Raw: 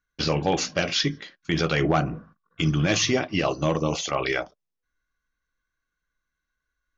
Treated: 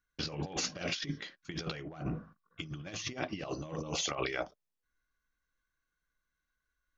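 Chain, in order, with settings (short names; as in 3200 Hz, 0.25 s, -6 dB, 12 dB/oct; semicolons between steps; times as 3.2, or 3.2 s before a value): negative-ratio compressor -28 dBFS, ratio -0.5; gain -8.5 dB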